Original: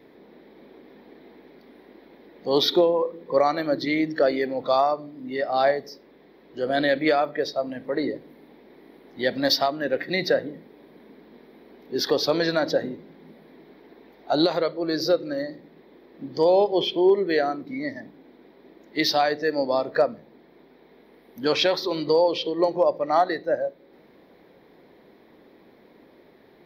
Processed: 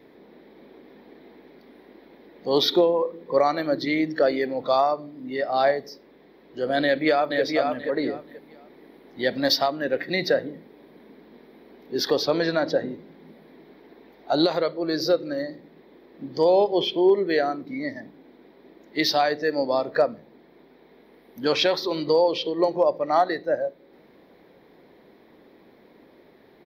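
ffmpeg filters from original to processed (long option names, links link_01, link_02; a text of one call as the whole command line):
ffmpeg -i in.wav -filter_complex "[0:a]asplit=2[link_01][link_02];[link_02]afade=type=in:start_time=6.82:duration=0.01,afade=type=out:start_time=7.42:duration=0.01,aecho=0:1:480|960|1440:0.630957|0.126191|0.0252383[link_03];[link_01][link_03]amix=inputs=2:normalize=0,asettb=1/sr,asplit=3[link_04][link_05][link_06];[link_04]atrim=end=12.234[link_07];[link_05]atrim=start=12.23:end=12.89,asetpts=PTS-STARTPTS,afade=type=in:duration=0.004:curve=qsin,afade=type=out:start_time=0.656:duration=0.004:curve=qsin,lowpass=frequency=3800:poles=1[link_08];[link_06]atrim=start=12.886[link_09];[link_07][link_08]acrossfade=duration=0.004:curve1=hsin:curve2=qsin[link_10];[link_10][link_09]acrossfade=duration=0.004:curve1=qsin:curve2=hsin" out.wav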